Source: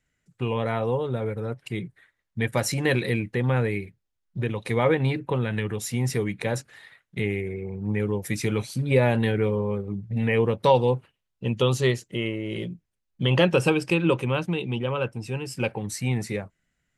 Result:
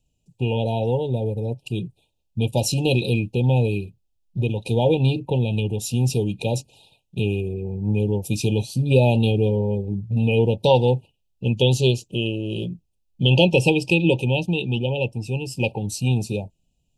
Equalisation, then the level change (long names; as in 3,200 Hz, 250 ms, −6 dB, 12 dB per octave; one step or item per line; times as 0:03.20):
low-shelf EQ 110 Hz +8.5 dB
dynamic equaliser 3,300 Hz, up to +5 dB, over −40 dBFS, Q 0.88
linear-phase brick-wall band-stop 950–2,400 Hz
+2.0 dB